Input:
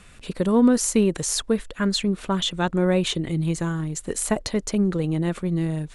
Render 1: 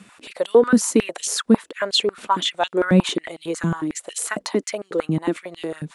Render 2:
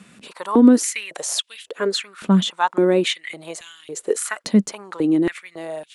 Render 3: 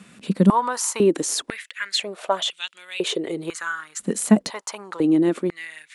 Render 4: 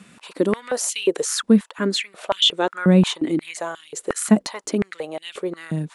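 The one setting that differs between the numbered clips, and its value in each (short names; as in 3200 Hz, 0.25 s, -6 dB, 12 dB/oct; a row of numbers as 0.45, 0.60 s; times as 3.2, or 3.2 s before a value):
stepped high-pass, rate: 11, 3.6, 2, 5.6 Hz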